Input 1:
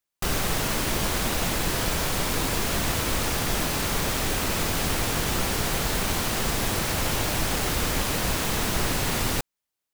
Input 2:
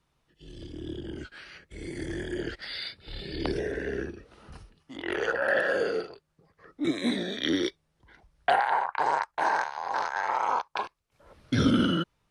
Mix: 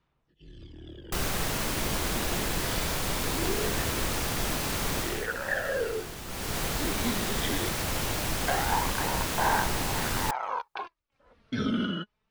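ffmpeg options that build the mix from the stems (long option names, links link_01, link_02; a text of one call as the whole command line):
ffmpeg -i stem1.wav -i stem2.wav -filter_complex "[0:a]adelay=900,volume=6dB,afade=type=out:start_time=4.98:duration=0.3:silence=0.298538,afade=type=in:start_time=6.26:duration=0.33:silence=0.316228[link_01];[1:a]lowpass=2700,aemphasis=mode=production:type=75fm,aphaser=in_gain=1:out_gain=1:delay=4.8:decay=0.5:speed=0.21:type=sinusoidal,volume=-6dB[link_02];[link_01][link_02]amix=inputs=2:normalize=0" out.wav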